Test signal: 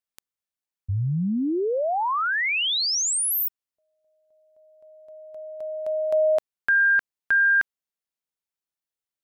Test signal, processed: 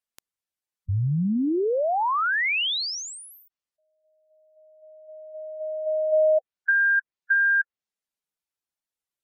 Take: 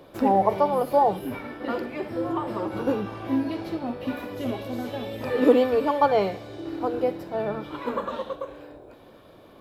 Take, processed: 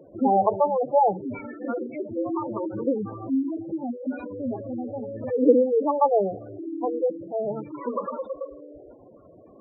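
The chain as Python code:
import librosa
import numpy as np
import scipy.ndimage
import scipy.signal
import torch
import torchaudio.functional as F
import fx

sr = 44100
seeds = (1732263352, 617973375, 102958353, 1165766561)

y = fx.env_lowpass_down(x, sr, base_hz=1800.0, full_db=-18.5)
y = fx.spec_gate(y, sr, threshold_db=-10, keep='strong')
y = F.gain(torch.from_numpy(y), 1.0).numpy()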